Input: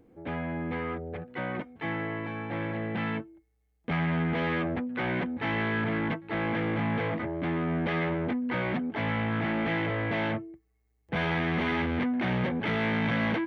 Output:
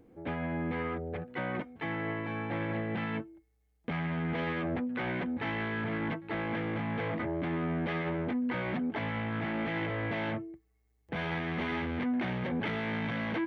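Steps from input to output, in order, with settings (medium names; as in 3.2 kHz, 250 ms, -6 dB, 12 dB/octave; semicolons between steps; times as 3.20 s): peak limiter -25.5 dBFS, peak gain reduction 8 dB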